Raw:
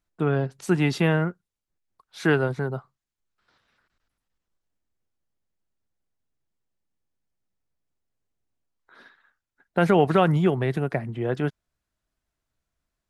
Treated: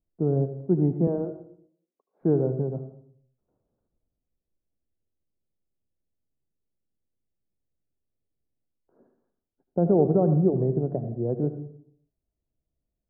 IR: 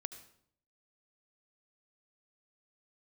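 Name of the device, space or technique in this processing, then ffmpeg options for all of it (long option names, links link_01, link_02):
next room: -filter_complex "[0:a]asettb=1/sr,asplit=3[link_01][link_02][link_03];[link_01]atrim=end=1.074[link_04];[link_02]atrim=start=1.07:end=2.21,asetpts=PTS-STARTPTS,afade=type=in:duration=0.004:curve=qsin,afade=type=out:start_time=1.136:duration=0.004:curve=qsin,highpass=frequency=260:width=0.5412,highpass=frequency=260:width=1.3066[link_05];[link_03]atrim=start=2.206[link_06];[link_04][link_05]acrossfade=duration=0.004:curve1=hsin:curve2=qsin[link_07];[link_07][link_06]acrossfade=duration=0.004:curve1=qsin:curve2=hsin,lowpass=frequency=610:width=0.5412,lowpass=frequency=610:width=1.3066[link_08];[1:a]atrim=start_sample=2205[link_09];[link_08][link_09]afir=irnorm=-1:irlink=0,volume=2.5dB"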